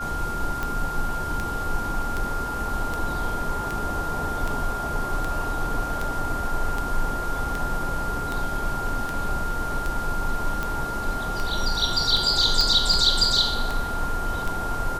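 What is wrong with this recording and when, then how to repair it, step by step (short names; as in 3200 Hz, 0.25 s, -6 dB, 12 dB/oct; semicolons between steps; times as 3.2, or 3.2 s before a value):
tick 78 rpm -14 dBFS
tone 1400 Hz -29 dBFS
12.61 pop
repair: de-click; notch 1400 Hz, Q 30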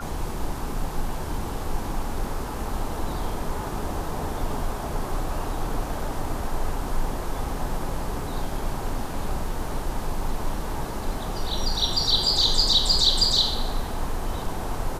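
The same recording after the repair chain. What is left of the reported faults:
none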